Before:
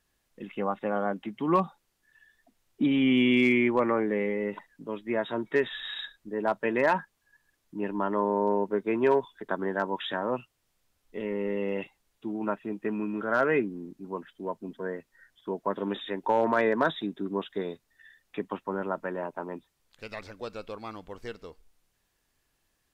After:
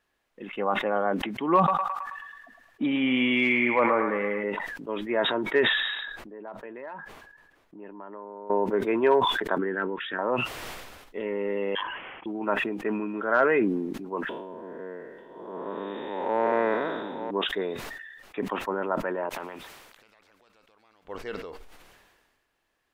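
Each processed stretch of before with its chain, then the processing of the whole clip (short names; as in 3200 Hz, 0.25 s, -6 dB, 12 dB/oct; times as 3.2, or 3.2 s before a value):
1.57–4.44 bell 380 Hz -8 dB 0.35 oct + narrowing echo 0.108 s, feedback 58%, band-pass 1500 Hz, level -4 dB
5.95–8.5 compressor 3:1, threshold -44 dBFS + high shelf 2400 Hz -8.5 dB
9.58–10.19 LPF 2900 Hz 24 dB/oct + band shelf 770 Hz -13 dB 1.2 oct
11.75–12.26 HPF 750 Hz + inverted band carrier 3700 Hz
14.29–17.31 time blur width 0.354 s + echo 0.893 s -9 dB
19.29–21.05 compressor 12:1, threshold -51 dBFS + spectral compressor 2:1
whole clip: tone controls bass -11 dB, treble -12 dB; sustainer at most 37 dB/s; gain +3.5 dB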